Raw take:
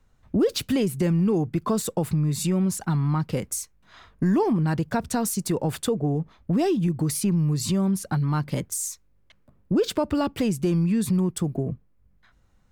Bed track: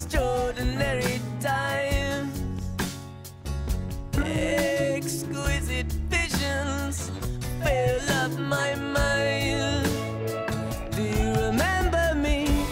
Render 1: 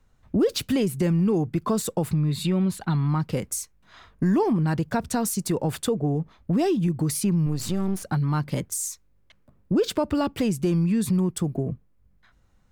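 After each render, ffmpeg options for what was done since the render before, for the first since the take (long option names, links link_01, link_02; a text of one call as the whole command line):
ffmpeg -i in.wav -filter_complex "[0:a]asettb=1/sr,asplit=3[link_01][link_02][link_03];[link_01]atrim=end=2.144[link_04];[link_02]atrim=start=2.14:end=3.08,asetpts=PTS-STARTPTS,afade=type=in:duration=0.004:curve=qsin,afade=type=out:start_time=0.936:duration=0.004:curve=qsin,highshelf=frequency=4800:width_type=q:width=3:gain=-6[link_05];[link_03]atrim=start=3.076[link_06];[link_04][link_05]acrossfade=duration=0.004:curve1=hsin:curve2=qsin[link_07];[link_07][link_06]acrossfade=duration=0.004:curve1=qsin:curve2=hsin,asettb=1/sr,asplit=3[link_08][link_09][link_10];[link_08]atrim=end=7.464[link_11];[link_09]atrim=start=7.46:end=8.03,asetpts=PTS-STARTPTS,afade=type=in:duration=0.004:curve=qsin,afade=type=out:start_time=0.566:duration=0.004:curve=qsin,aeval=exprs='if(lt(val(0),0),0.251*val(0),val(0))':channel_layout=same[link_12];[link_10]atrim=start=8.026[link_13];[link_11][link_12]acrossfade=duration=0.004:curve1=hsin:curve2=qsin[link_14];[link_14][link_13]acrossfade=duration=0.004:curve1=qsin:curve2=hsin" out.wav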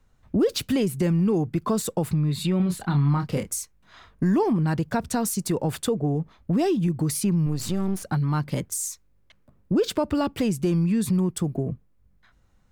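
ffmpeg -i in.wav -filter_complex "[0:a]asettb=1/sr,asplit=3[link_01][link_02][link_03];[link_01]atrim=end=2.574[link_04];[link_02]atrim=start=2.57:end=3.54,asetpts=PTS-STARTPTS,afade=type=in:duration=0.004:curve=qsin,afade=type=out:start_time=0.966:duration=0.004:curve=qsin,asplit=2[link_05][link_06];[link_06]adelay=28,volume=-6.5dB[link_07];[link_05][link_07]amix=inputs=2:normalize=0,atrim=end_sample=42777[link_08];[link_03]atrim=start=3.536[link_09];[link_04][link_08]acrossfade=duration=0.004:curve1=hsin:curve2=qsin[link_10];[link_10][link_09]acrossfade=duration=0.004:curve1=qsin:curve2=hsin" out.wav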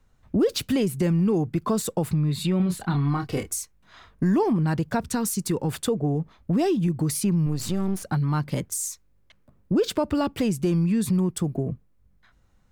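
ffmpeg -i in.wav -filter_complex "[0:a]asettb=1/sr,asplit=3[link_01][link_02][link_03];[link_01]atrim=end=2.944[link_04];[link_02]atrim=start=2.94:end=3.53,asetpts=PTS-STARTPTS,afade=type=in:duration=0.004:curve=qsin,afade=type=out:start_time=0.586:duration=0.004:curve=qsin,aecho=1:1:2.7:0.58,atrim=end_sample=26019[link_05];[link_03]atrim=start=3.526[link_06];[link_04][link_05]acrossfade=duration=0.004:curve1=hsin:curve2=qsin[link_07];[link_07][link_06]acrossfade=duration=0.004:curve1=qsin:curve2=hsin,asettb=1/sr,asplit=3[link_08][link_09][link_10];[link_08]atrim=end=5.034[link_11];[link_09]atrim=start=5.03:end=5.71,asetpts=PTS-STARTPTS,afade=type=in:duration=0.004:curve=qsin,afade=type=out:start_time=0.676:duration=0.004:curve=qsin,equalizer=frequency=650:width=4.9:gain=-13.5[link_12];[link_10]atrim=start=5.706[link_13];[link_11][link_12]acrossfade=duration=0.004:curve1=hsin:curve2=qsin[link_14];[link_14][link_13]acrossfade=duration=0.004:curve1=qsin:curve2=hsin" out.wav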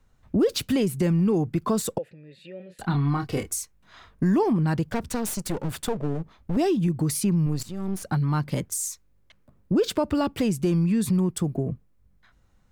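ffmpeg -i in.wav -filter_complex "[0:a]asettb=1/sr,asplit=3[link_01][link_02][link_03];[link_01]atrim=end=1.984[link_04];[link_02]atrim=start=1.98:end=2.79,asetpts=PTS-STARTPTS,afade=type=in:duration=0.004:curve=qsin,afade=type=out:start_time=0.806:duration=0.004:curve=qsin,asplit=3[link_05][link_06][link_07];[link_05]bandpass=frequency=530:width_type=q:width=8,volume=0dB[link_08];[link_06]bandpass=frequency=1840:width_type=q:width=8,volume=-6dB[link_09];[link_07]bandpass=frequency=2480:width_type=q:width=8,volume=-9dB[link_10];[link_08][link_09][link_10]amix=inputs=3:normalize=0[link_11];[link_03]atrim=start=2.786[link_12];[link_04][link_11]acrossfade=duration=0.004:curve1=hsin:curve2=qsin[link_13];[link_13][link_12]acrossfade=duration=0.004:curve1=qsin:curve2=hsin,asettb=1/sr,asplit=3[link_14][link_15][link_16];[link_14]atrim=end=4.844[link_17];[link_15]atrim=start=4.84:end=6.57,asetpts=PTS-STARTPTS,afade=type=in:duration=0.004:curve=qsin,afade=type=out:start_time=1.726:duration=0.004:curve=qsin,aeval=exprs='clip(val(0),-1,0.0188)':channel_layout=same[link_18];[link_16]atrim=start=6.566[link_19];[link_17][link_18]acrossfade=duration=0.004:curve1=hsin:curve2=qsin[link_20];[link_20][link_19]acrossfade=duration=0.004:curve1=qsin:curve2=hsin,asplit=2[link_21][link_22];[link_21]atrim=end=7.63,asetpts=PTS-STARTPTS,afade=type=out:start_time=7.626:duration=0.004:curve=hsin:silence=0.149624[link_23];[link_22]atrim=start=7.63,asetpts=PTS-STARTPTS,afade=type=in:duration=0.4:silence=0.149624[link_24];[link_23][link_24]concat=n=2:v=0:a=1" out.wav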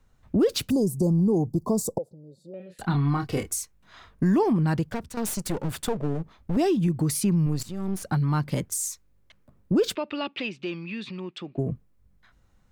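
ffmpeg -i in.wav -filter_complex "[0:a]asettb=1/sr,asplit=3[link_01][link_02][link_03];[link_01]atrim=end=0.704[link_04];[link_02]atrim=start=0.7:end=2.54,asetpts=PTS-STARTPTS,afade=type=in:duration=0.004:curve=qsin,afade=type=out:start_time=1.836:duration=0.004:curve=qsin,asuperstop=centerf=2200:order=8:qfactor=0.54[link_05];[link_03]atrim=start=2.536[link_06];[link_04][link_05]acrossfade=duration=0.004:curve1=hsin:curve2=qsin[link_07];[link_07][link_06]acrossfade=duration=0.004:curve1=qsin:curve2=hsin,asplit=3[link_08][link_09][link_10];[link_08]afade=type=out:start_time=9.94:duration=0.02[link_11];[link_09]highpass=440,equalizer=frequency=460:width_type=q:width=4:gain=-8,equalizer=frequency=710:width_type=q:width=4:gain=-7,equalizer=frequency=1000:width_type=q:width=4:gain=-6,equalizer=frequency=1500:width_type=q:width=4:gain=-4,equalizer=frequency=2600:width_type=q:width=4:gain=9,equalizer=frequency=3700:width_type=q:width=4:gain=4,lowpass=frequency=4100:width=0.5412,lowpass=frequency=4100:width=1.3066,afade=type=in:start_time=9.94:duration=0.02,afade=type=out:start_time=11.57:duration=0.02[link_12];[link_10]afade=type=in:start_time=11.57:duration=0.02[link_13];[link_11][link_12][link_13]amix=inputs=3:normalize=0,asplit=2[link_14][link_15];[link_14]atrim=end=5.17,asetpts=PTS-STARTPTS,afade=type=out:start_time=4.77:duration=0.4:silence=0.266073[link_16];[link_15]atrim=start=5.17,asetpts=PTS-STARTPTS,afade=type=in:duration=0.004:curve=hsin:silence=0.266073[link_17];[link_16][link_17]concat=n=2:v=0:a=1" out.wav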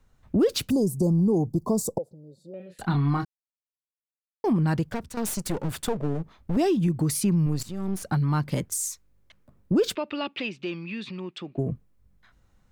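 ffmpeg -i in.wav -filter_complex "[0:a]asplit=3[link_01][link_02][link_03];[link_01]atrim=end=3.25,asetpts=PTS-STARTPTS,afade=type=out:start_time=3.246:duration=0.004:curve=hsin[link_04];[link_02]atrim=start=3.25:end=4.44,asetpts=PTS-STARTPTS,volume=0[link_05];[link_03]atrim=start=4.44,asetpts=PTS-STARTPTS,afade=type=in:duration=0.004:curve=hsin[link_06];[link_04][link_05][link_06]concat=n=3:v=0:a=1" out.wav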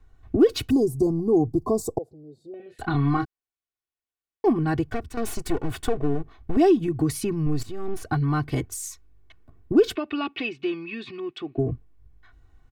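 ffmpeg -i in.wav -af "bass=frequency=250:gain=4,treble=frequency=4000:gain=-8,aecho=1:1:2.7:0.87" out.wav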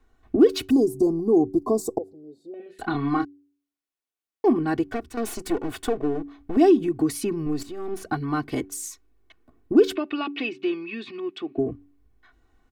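ffmpeg -i in.wav -af "lowshelf=frequency=180:width_type=q:width=1.5:gain=-8.5,bandreject=frequency=95.06:width_type=h:width=4,bandreject=frequency=190.12:width_type=h:width=4,bandreject=frequency=285.18:width_type=h:width=4,bandreject=frequency=380.24:width_type=h:width=4" out.wav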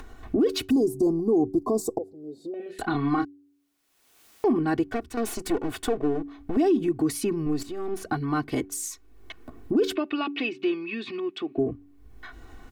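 ffmpeg -i in.wav -af "acompressor=mode=upward:threshold=-28dB:ratio=2.5,alimiter=limit=-15dB:level=0:latency=1:release=17" out.wav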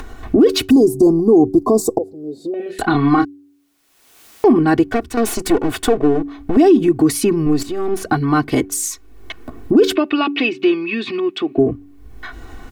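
ffmpeg -i in.wav -af "volume=11dB" out.wav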